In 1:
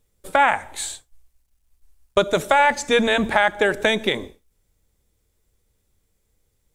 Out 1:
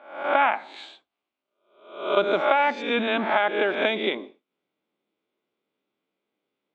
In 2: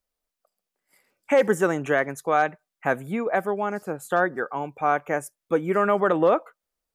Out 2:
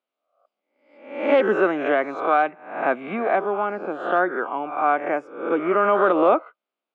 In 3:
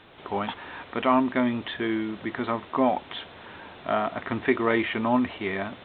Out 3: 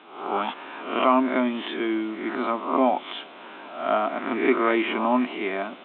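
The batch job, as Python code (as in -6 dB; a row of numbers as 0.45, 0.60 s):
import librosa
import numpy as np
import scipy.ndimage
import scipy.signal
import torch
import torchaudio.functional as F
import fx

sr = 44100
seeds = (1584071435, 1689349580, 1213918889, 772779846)

y = fx.spec_swells(x, sr, rise_s=0.61)
y = fx.cabinet(y, sr, low_hz=250.0, low_slope=24, high_hz=3100.0, hz=(480.0, 890.0, 1800.0), db=(-7, -3, -10))
y = y * 10.0 ** (-6 / 20.0) / np.max(np.abs(y))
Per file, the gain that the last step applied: -2.0, +3.5, +3.5 dB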